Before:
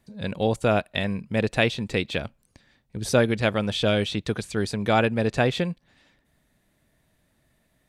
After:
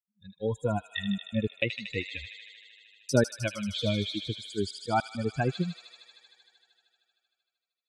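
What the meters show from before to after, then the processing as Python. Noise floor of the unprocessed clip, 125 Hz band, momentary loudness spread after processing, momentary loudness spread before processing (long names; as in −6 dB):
−69 dBFS, −5.5 dB, 14 LU, 9 LU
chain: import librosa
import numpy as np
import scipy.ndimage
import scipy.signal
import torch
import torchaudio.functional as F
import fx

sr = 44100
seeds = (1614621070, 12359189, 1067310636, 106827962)

p1 = fx.bin_expand(x, sr, power=3.0)
p2 = scipy.signal.sosfilt(scipy.signal.butter(2, 79.0, 'highpass', fs=sr, output='sos'), p1)
p3 = fx.noise_reduce_blind(p2, sr, reduce_db=9)
p4 = fx.high_shelf(p3, sr, hz=10000.0, db=-12.0)
p5 = fx.rider(p4, sr, range_db=4, speed_s=0.5)
p6 = p4 + (p5 * 10.0 ** (3.0 / 20.0))
p7 = fx.step_gate(p6, sr, bpm=102, pattern='xxxxxxxx.x.x', floor_db=-60.0, edge_ms=4.5)
p8 = fx.echo_wet_highpass(p7, sr, ms=77, feedback_pct=83, hz=3200.0, wet_db=-3.0)
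p9 = fx.notch_cascade(p8, sr, direction='falling', hz=0.51)
y = p9 * 10.0 ** (-5.5 / 20.0)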